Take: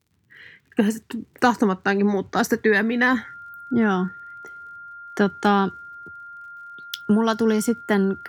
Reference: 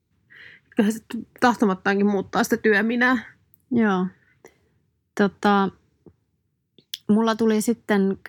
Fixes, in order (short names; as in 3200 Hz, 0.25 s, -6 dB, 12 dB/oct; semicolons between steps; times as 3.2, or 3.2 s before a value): de-click; notch 1400 Hz, Q 30